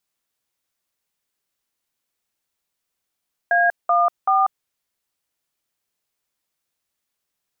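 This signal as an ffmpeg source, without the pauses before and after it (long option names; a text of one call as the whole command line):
ffmpeg -f lavfi -i "aevalsrc='0.15*clip(min(mod(t,0.382),0.191-mod(t,0.382))/0.002,0,1)*(eq(floor(t/0.382),0)*(sin(2*PI*697*mod(t,0.382))+sin(2*PI*1633*mod(t,0.382)))+eq(floor(t/0.382),1)*(sin(2*PI*697*mod(t,0.382))+sin(2*PI*1209*mod(t,0.382)))+eq(floor(t/0.382),2)*(sin(2*PI*770*mod(t,0.382))+sin(2*PI*1209*mod(t,0.382))))':duration=1.146:sample_rate=44100" out.wav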